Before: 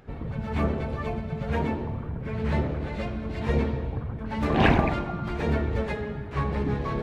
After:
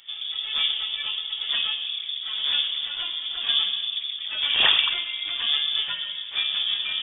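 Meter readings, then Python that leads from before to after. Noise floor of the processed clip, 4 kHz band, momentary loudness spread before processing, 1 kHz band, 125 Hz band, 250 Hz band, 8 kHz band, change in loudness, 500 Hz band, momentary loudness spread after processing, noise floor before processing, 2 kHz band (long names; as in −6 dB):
−35 dBFS, +24.5 dB, 10 LU, −8.5 dB, below −30 dB, below −25 dB, can't be measured, +5.0 dB, −19.0 dB, 9 LU, −36 dBFS, +4.0 dB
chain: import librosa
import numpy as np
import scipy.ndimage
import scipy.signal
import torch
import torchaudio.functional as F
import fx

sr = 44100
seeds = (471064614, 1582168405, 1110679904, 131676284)

y = fx.freq_invert(x, sr, carrier_hz=3500)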